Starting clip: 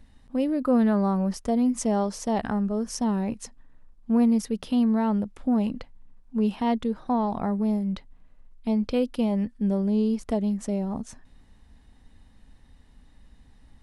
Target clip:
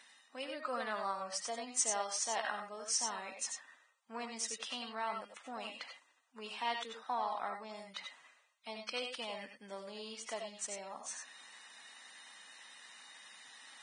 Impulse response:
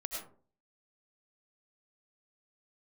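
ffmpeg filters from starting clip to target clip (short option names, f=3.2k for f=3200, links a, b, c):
-filter_complex "[0:a]highpass=1.3k,areverse,acompressor=mode=upward:threshold=-44dB:ratio=2.5,areverse[a];[1:a]atrim=start_sample=2205,atrim=end_sample=4410[b];[a][b]afir=irnorm=-1:irlink=0,volume=2.5dB" -ar 22050 -c:a libvorbis -b:a 16k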